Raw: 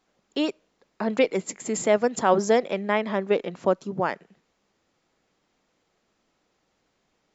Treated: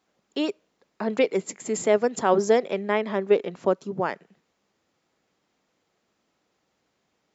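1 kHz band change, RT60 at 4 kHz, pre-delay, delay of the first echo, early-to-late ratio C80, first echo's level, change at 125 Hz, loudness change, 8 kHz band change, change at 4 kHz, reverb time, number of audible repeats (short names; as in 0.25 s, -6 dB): -1.5 dB, none, none, none, none, none, -1.5 dB, 0.0 dB, n/a, -1.5 dB, none, none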